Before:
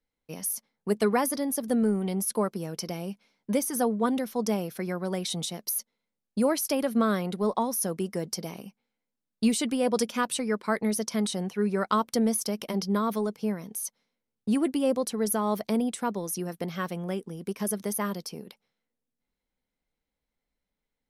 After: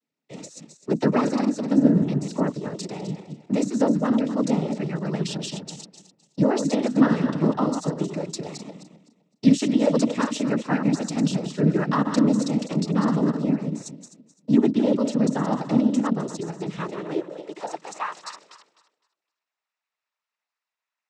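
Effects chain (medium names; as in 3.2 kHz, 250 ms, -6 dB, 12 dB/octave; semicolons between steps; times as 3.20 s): backward echo that repeats 128 ms, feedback 48%, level -7 dB; high-pass sweep 220 Hz -> 1.1 kHz, 16.70–18.08 s; noise-vocoded speech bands 12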